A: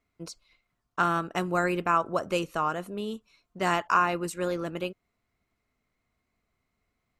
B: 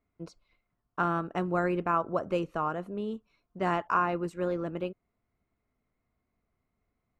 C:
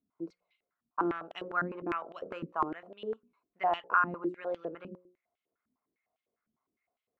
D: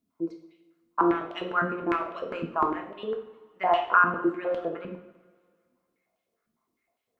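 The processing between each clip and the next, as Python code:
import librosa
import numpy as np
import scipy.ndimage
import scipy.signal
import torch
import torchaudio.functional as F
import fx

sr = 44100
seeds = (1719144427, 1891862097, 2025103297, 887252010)

y1 = fx.lowpass(x, sr, hz=1000.0, slope=6)
y2 = fx.hum_notches(y1, sr, base_hz=60, count=9)
y2 = fx.filter_held_bandpass(y2, sr, hz=9.9, low_hz=230.0, high_hz=3100.0)
y2 = F.gain(torch.from_numpy(y2), 6.5).numpy()
y3 = fx.rev_double_slope(y2, sr, seeds[0], early_s=0.58, late_s=2.0, knee_db=-18, drr_db=2.5)
y3 = F.gain(torch.from_numpy(y3), 5.0).numpy()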